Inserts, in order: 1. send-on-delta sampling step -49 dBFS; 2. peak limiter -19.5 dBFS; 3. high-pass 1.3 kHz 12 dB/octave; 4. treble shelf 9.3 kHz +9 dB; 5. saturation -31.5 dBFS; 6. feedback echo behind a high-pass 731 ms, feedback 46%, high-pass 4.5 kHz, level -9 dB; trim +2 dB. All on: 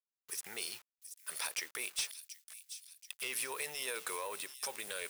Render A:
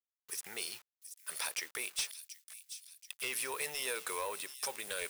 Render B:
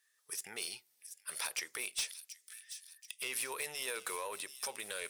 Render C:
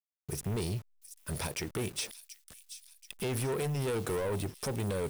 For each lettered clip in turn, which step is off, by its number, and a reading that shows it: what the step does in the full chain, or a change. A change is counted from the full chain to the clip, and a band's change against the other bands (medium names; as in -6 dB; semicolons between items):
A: 2, loudness change +1.0 LU; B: 1, distortion -29 dB; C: 3, 125 Hz band +33.5 dB